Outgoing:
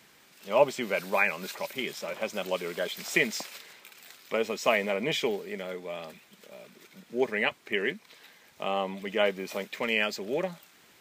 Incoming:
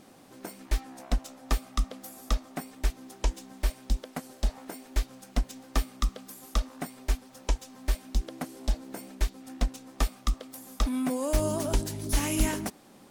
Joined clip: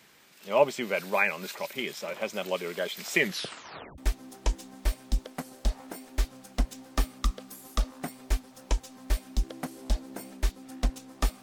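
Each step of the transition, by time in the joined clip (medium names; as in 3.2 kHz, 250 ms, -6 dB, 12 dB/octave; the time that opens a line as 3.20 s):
outgoing
3.19 s: tape stop 0.79 s
3.98 s: go over to incoming from 2.76 s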